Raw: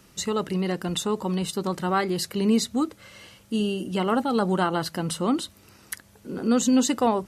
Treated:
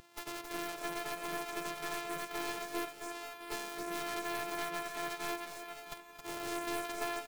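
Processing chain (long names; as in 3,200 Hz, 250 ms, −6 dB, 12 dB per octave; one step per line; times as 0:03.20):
samples sorted by size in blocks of 128 samples
high-pass filter 680 Hz 6 dB per octave
high-shelf EQ 2,100 Hz +5 dB
pitch-shifted copies added −3 semitones −17 dB, +4 semitones −11 dB
downward compressor 12 to 1, threshold −35 dBFS, peak gain reduction 21.5 dB
wrap-around overflow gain 26.5 dB
bouncing-ball delay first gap 270 ms, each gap 0.8×, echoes 5
every bin expanded away from the loudest bin 1.5 to 1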